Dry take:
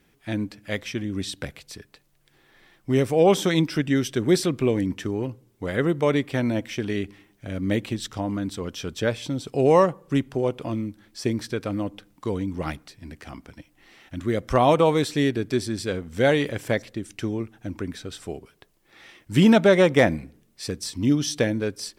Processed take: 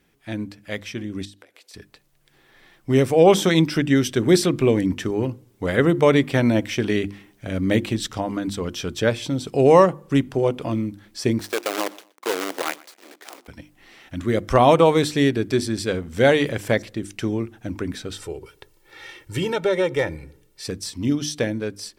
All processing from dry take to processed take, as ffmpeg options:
-filter_complex "[0:a]asettb=1/sr,asplit=3[a][b][c];[a]atrim=end=1.254[d];[b]atrim=start=1.25:end=1.74,asetpts=PTS-STARTPTS,afade=t=in:d=0.004:c=qsin,afade=t=out:st=0.486:d=0.004:c=qsin,acompressor=threshold=-45dB:ratio=6:attack=3.2:release=140:knee=1:detection=peak,highpass=f=320:w=0.5412,highpass=f=320:w=1.3066[e];[c]atrim=start=1.736[f];[d][e]acrossfade=d=0.004:c1=hsin:c2=qsin[g];[g][f]acrossfade=d=0.004:c1=qsin:c2=hsin,asettb=1/sr,asplit=3[h][i][j];[h]atrim=end=11.404[k];[i]atrim=start=11.4:end=13.48,asetpts=PTS-STARTPTS,afade=t=in:d=0.004:c=qsin,afade=t=out:st=2.076:d=0.004:c=qsin,acrusher=bits=5:dc=4:mix=0:aa=0.000001,highpass=f=350:w=0.5412,highpass=f=350:w=1.3066,aecho=1:1:121|242:0.075|0.021,atrim=end_sample=91728[l];[j]atrim=start=13.476[m];[k][l]acrossfade=d=0.004:c1=hsin:c2=qsin[n];[n][m]acrossfade=d=0.004:c1=qsin:c2=hsin,asettb=1/sr,asplit=3[o][p][q];[o]atrim=end=18.134[r];[p]atrim=start=18.13:end=20.65,asetpts=PTS-STARTPTS,afade=t=in:d=0.004:c=qsin,afade=t=out:st=2.516:d=0.004:c=qsin,acompressor=threshold=-42dB:ratio=1.5:attack=3.2:release=140:knee=1:detection=peak,aecho=1:1:2.2:0.77,atrim=end_sample=111132[s];[q]atrim=start=20.646[t];[r][s]acrossfade=d=0.004:c1=hsin:c2=qsin[u];[u][t]acrossfade=d=0.004:c1=qsin:c2=hsin,bandreject=f=50:t=h:w=6,bandreject=f=100:t=h:w=6,bandreject=f=150:t=h:w=6,bandreject=f=200:t=h:w=6,bandreject=f=250:t=h:w=6,bandreject=f=300:t=h:w=6,bandreject=f=350:t=h:w=6,dynaudnorm=f=260:g=17:m=11.5dB,volume=-1dB"

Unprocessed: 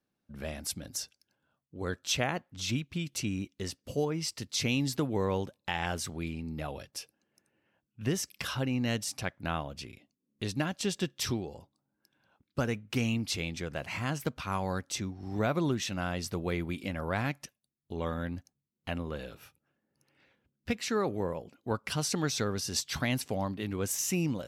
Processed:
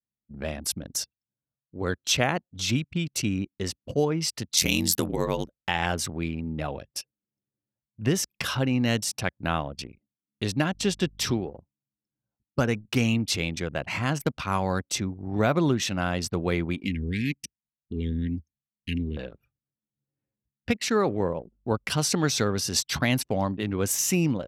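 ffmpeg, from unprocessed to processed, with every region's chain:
-filter_complex "[0:a]asettb=1/sr,asplit=3[a][b][c];[a]atrim=end=4.574[d];[b]atrim=start=4.57:end=5.63,asetpts=PTS-STARTPTS,afade=t=in:d=0.004:c=qsin,afade=t=out:st=1.056:d=0.004:c=qsin,aemphasis=mode=production:type=75fm,aeval=exprs='val(0)*sin(2*PI*43*n/s)':c=same[e];[c]atrim=start=5.626[f];[d][e]acrossfade=d=0.004:c1=hsin:c2=qsin[g];[g][f]acrossfade=d=0.004:c1=qsin:c2=hsin,asettb=1/sr,asplit=3[h][i][j];[h]atrim=end=10.734[k];[i]atrim=start=10.73:end=11.51,asetpts=PTS-STARTPTS,afade=t=in:d=0.004:c=qsin,afade=t=out:st=0.776:d=0.004:c=qsin,highpass=81,highshelf=f=8.6k:g=-5.5,aeval=exprs='val(0)+0.00316*(sin(2*PI*50*n/s)+sin(2*PI*2*50*n/s)/2+sin(2*PI*3*50*n/s)/3+sin(2*PI*4*50*n/s)/4+sin(2*PI*5*50*n/s)/5)':c=same[l];[j]atrim=start=11.506[m];[k][l]acrossfade=d=0.004:c1=hsin:c2=qsin[n];[n][m]acrossfade=d=0.004:c1=qsin:c2=hsin,asettb=1/sr,asplit=3[o][p][q];[o]atrim=end=16.834[r];[p]atrim=start=16.83:end=19.17,asetpts=PTS-STARTPTS,afade=t=in:d=0.004:c=qsin,afade=t=out:st=2.336:d=0.004:c=qsin,asuperstop=centerf=890:order=12:qfactor=0.56,equalizer=f=80:t=o:w=0.3:g=7,aecho=1:1:4.3:0.4,atrim=end_sample=103194[s];[q]atrim=start=19.166[t];[r][s]acrossfade=d=0.004:c1=hsin:c2=qsin[u];[u][t]acrossfade=d=0.004:c1=qsin:c2=hsin,asettb=1/sr,asplit=3[v][w][x];[v]atrim=end=21.284[y];[w]atrim=start=21.28:end=21.84,asetpts=PTS-STARTPTS,afade=t=in:d=0.004:c=qsin,afade=t=out:st=0.556:d=0.004:c=qsin,equalizer=f=1.9k:w=1.5:g=-9.5,aeval=exprs='val(0)+0.000631*(sin(2*PI*50*n/s)+sin(2*PI*2*50*n/s)/2+sin(2*PI*3*50*n/s)/3+sin(2*PI*4*50*n/s)/4+sin(2*PI*5*50*n/s)/5)':c=same[z];[x]atrim=start=21.836[aa];[y][z]acrossfade=d=0.004:c1=hsin:c2=qsin[ab];[ab][aa]acrossfade=d=0.004:c1=qsin:c2=hsin,highpass=59,anlmdn=0.158,volume=6.5dB"

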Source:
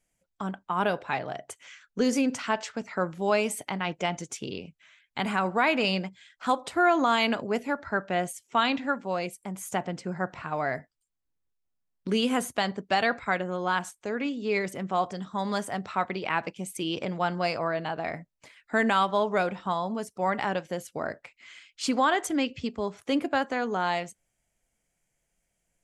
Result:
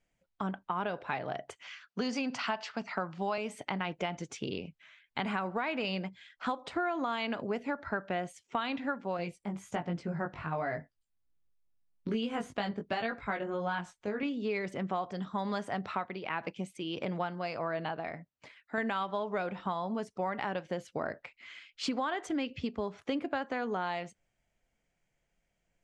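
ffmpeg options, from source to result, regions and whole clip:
-filter_complex "[0:a]asettb=1/sr,asplit=3[a][b][c];[a]atrim=end=1.614[d];[b]atrim=start=1.61:end=3.38,asetpts=PTS-STARTPTS,afade=t=in:d=0.004:c=qsin,afade=t=out:st=1.766:d=0.004:c=qsin,highpass=f=120:w=0.5412,highpass=f=120:w=1.3066,equalizer=f=290:t=q:w=4:g=-6,equalizer=f=480:t=q:w=4:g=-7,equalizer=f=740:t=q:w=4:g=5,equalizer=f=1.1k:t=q:w=4:g=6,equalizer=f=2.8k:t=q:w=4:g=4,equalizer=f=4.7k:t=q:w=4:g=8,lowpass=f=8.8k:w=0.5412,lowpass=f=8.8k:w=1.3066,bandreject=f=1.1k:w=25[e];[c]atrim=start=3.376[f];[d][e]acrossfade=d=0.004:c1=hsin:c2=qsin[g];[g][f]acrossfade=d=0.004:c1=qsin:c2=hsin,asettb=1/sr,asplit=3[h][i][j];[h]atrim=end=9.174[k];[i]atrim=start=9.17:end=14.23,asetpts=PTS-STARTPTS,afade=t=in:d=0.004:c=qsin,afade=t=out:st=5.056:d=0.004:c=qsin,lowshelf=f=200:g=7.5,flanger=delay=17.5:depth=2.1:speed=1.3[l];[j]atrim=start=14.226[m];[k][l]acrossfade=d=0.004:c1=hsin:c2=qsin[n];[n][m]acrossfade=d=0.004:c1=qsin:c2=hsin,asettb=1/sr,asplit=3[o][p][q];[o]atrim=end=15.924[r];[p]atrim=start=15.92:end=18.78,asetpts=PTS-STARTPTS,afade=t=in:d=0.004:c=qsin,afade=t=out:st=2.856:d=0.004:c=qsin,highpass=60,tremolo=f=1.6:d=0.54[s];[q]atrim=start=18.776[t];[r][s]acrossfade=d=0.004:c1=hsin:c2=qsin[u];[u][t]acrossfade=d=0.004:c1=qsin:c2=hsin,lowpass=4.3k,acompressor=threshold=-30dB:ratio=6"

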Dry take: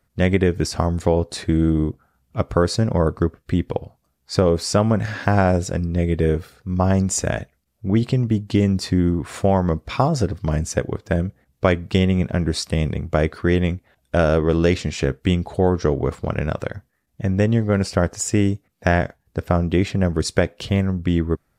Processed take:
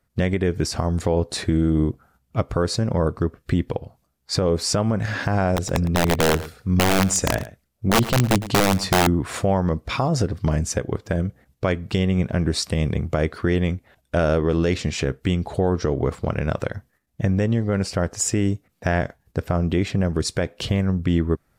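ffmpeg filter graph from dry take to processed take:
-filter_complex "[0:a]asettb=1/sr,asplit=3[a][b][c];[a]atrim=end=5.564[d];[b]atrim=start=5.56:end=9.07,asetpts=PTS-STARTPTS,afade=t=in:d=0.004:c=qsin,afade=t=out:st=3.506:d=0.004:c=qsin,aeval=exprs='(mod(3.76*val(0)+1,2)-1)/3.76':c=same,aecho=1:1:110:0.141,atrim=end_sample=154791[e];[c]atrim=start=9.066[f];[d][e]acrossfade=d=0.004:c1=hsin:c2=qsin[g];[g][f]acrossfade=d=0.004:c1=qsin:c2=hsin,alimiter=limit=-14.5dB:level=0:latency=1:release=289,agate=range=-7dB:threshold=-58dB:ratio=16:detection=peak,volume=4dB"

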